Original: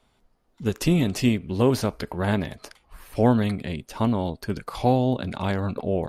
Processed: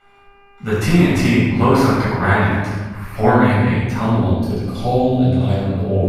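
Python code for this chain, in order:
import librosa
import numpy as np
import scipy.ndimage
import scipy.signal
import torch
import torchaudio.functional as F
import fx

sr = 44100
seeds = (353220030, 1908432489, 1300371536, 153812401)

y = fx.band_shelf(x, sr, hz=1400.0, db=fx.steps((0.0, 10.0), (4.01, -8.5)), octaves=1.7)
y = fx.dmg_buzz(y, sr, base_hz=400.0, harmonics=7, level_db=-57.0, tilt_db=-1, odd_only=False)
y = fx.room_shoebox(y, sr, seeds[0], volume_m3=950.0, walls='mixed', distance_m=7.1)
y = y * librosa.db_to_amplitude(-6.5)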